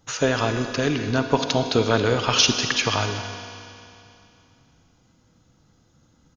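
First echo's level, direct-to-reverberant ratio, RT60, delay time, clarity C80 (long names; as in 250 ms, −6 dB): −16.5 dB, 5.5 dB, 2.8 s, 227 ms, 6.5 dB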